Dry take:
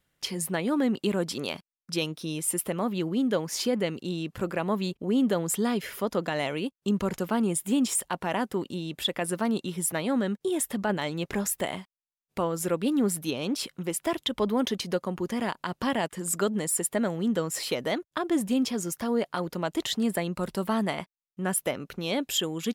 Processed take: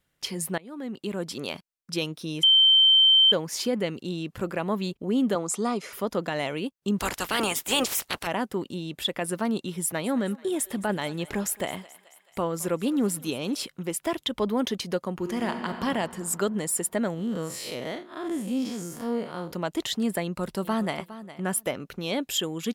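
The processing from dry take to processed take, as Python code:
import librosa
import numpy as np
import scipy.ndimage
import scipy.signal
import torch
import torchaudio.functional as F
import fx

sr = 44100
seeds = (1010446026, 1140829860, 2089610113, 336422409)

y = fx.cabinet(x, sr, low_hz=210.0, low_slope=12, high_hz=9900.0, hz=(730.0, 1200.0, 1700.0, 3100.0, 6200.0), db=(4, 8, -10, -7, 5), at=(5.35, 5.93))
y = fx.spec_clip(y, sr, under_db=29, at=(6.98, 8.26), fade=0.02)
y = fx.echo_thinned(y, sr, ms=216, feedback_pct=64, hz=600.0, wet_db=-18.5, at=(9.81, 13.63))
y = fx.reverb_throw(y, sr, start_s=15.17, length_s=0.66, rt60_s=2.6, drr_db=4.5)
y = fx.spec_blur(y, sr, span_ms=121.0, at=(17.14, 19.52))
y = fx.echo_throw(y, sr, start_s=20.23, length_s=0.76, ms=410, feedback_pct=15, wet_db=-14.5)
y = fx.edit(y, sr, fx.fade_in_from(start_s=0.58, length_s=0.97, floor_db=-23.5),
    fx.bleep(start_s=2.43, length_s=0.89, hz=3110.0, db=-14.0), tone=tone)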